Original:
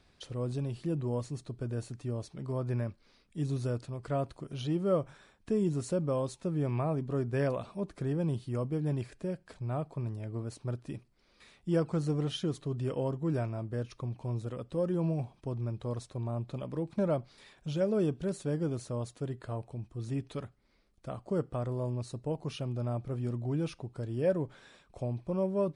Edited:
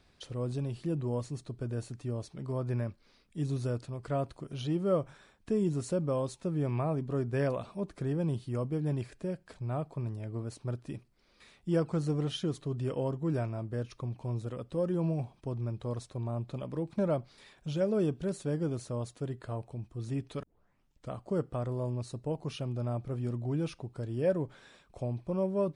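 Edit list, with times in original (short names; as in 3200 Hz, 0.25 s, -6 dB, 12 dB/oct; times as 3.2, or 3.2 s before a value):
20.43 tape start 0.68 s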